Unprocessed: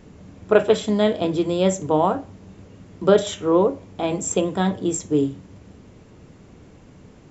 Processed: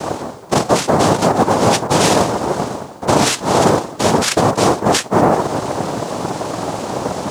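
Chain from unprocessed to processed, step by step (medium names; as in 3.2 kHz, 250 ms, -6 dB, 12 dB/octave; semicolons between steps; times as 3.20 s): noise-vocoded speech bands 2; reverse; compression 6:1, threshold -37 dBFS, peak gain reduction 25 dB; reverse; companded quantiser 8-bit; loudness maximiser +26.5 dB; trim -1 dB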